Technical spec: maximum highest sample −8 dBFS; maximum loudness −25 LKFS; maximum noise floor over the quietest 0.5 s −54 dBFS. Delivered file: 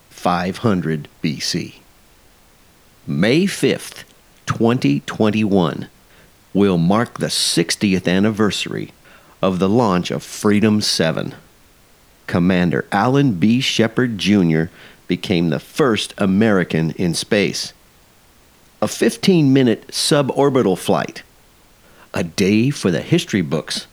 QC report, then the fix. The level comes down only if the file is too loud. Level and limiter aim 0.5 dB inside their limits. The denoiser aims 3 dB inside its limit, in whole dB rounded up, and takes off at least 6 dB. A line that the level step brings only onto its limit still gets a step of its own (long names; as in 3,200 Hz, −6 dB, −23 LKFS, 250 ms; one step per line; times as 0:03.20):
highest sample −2.0 dBFS: out of spec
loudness −17.5 LKFS: out of spec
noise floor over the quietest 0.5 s −51 dBFS: out of spec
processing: level −8 dB